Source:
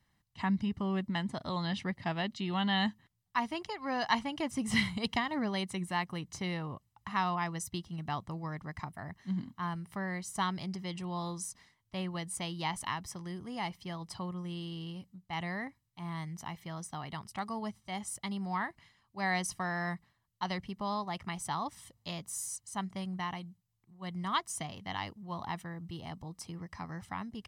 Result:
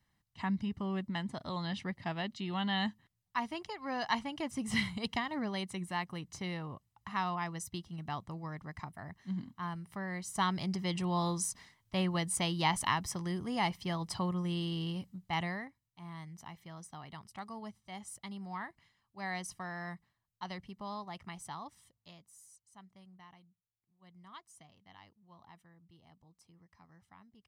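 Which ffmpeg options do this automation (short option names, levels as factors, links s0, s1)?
-af "volume=1.78,afade=t=in:st=10.07:d=0.89:silence=0.398107,afade=t=out:st=15.26:d=0.41:silence=0.251189,afade=t=out:st=21.31:d=1:silence=0.237137"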